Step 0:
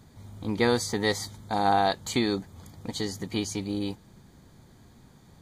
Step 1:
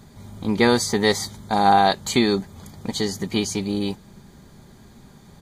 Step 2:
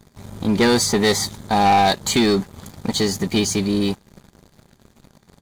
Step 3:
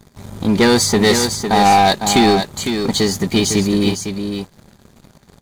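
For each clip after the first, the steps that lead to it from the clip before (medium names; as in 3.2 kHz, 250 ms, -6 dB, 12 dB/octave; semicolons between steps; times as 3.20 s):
comb 5 ms, depth 32%; trim +6.5 dB
waveshaping leveller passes 3; trim -5.5 dB
delay 505 ms -7 dB; trim +3.5 dB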